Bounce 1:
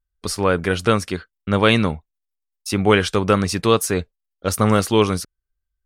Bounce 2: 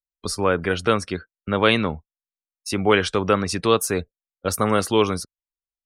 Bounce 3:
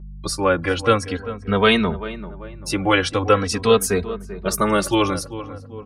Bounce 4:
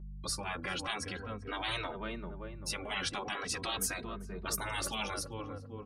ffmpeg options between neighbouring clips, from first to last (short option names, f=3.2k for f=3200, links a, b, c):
-filter_complex "[0:a]afftdn=nr=25:nf=-39,acrossover=split=240|4800[a][b][c];[a]alimiter=limit=-21.5dB:level=0:latency=1:release=104[d];[d][b][c]amix=inputs=3:normalize=0,volume=-1.5dB"
-filter_complex "[0:a]aeval=exprs='val(0)+0.0126*(sin(2*PI*50*n/s)+sin(2*PI*2*50*n/s)/2+sin(2*PI*3*50*n/s)/3+sin(2*PI*4*50*n/s)/4+sin(2*PI*5*50*n/s)/5)':c=same,asplit=2[a][b];[b]adelay=391,lowpass=f=1.5k:p=1,volume=-13dB,asplit=2[c][d];[d]adelay=391,lowpass=f=1.5k:p=1,volume=0.47,asplit=2[e][f];[f]adelay=391,lowpass=f=1.5k:p=1,volume=0.47,asplit=2[g][h];[h]adelay=391,lowpass=f=1.5k:p=1,volume=0.47,asplit=2[i][j];[j]adelay=391,lowpass=f=1.5k:p=1,volume=0.47[k];[a][c][e][g][i][k]amix=inputs=6:normalize=0,asplit=2[l][m];[m]adelay=2.9,afreqshift=-0.43[n];[l][n]amix=inputs=2:normalize=1,volume=5dB"
-af "afftfilt=real='re*lt(hypot(re,im),0.251)':imag='im*lt(hypot(re,im),0.251)':win_size=1024:overlap=0.75,volume=-8.5dB"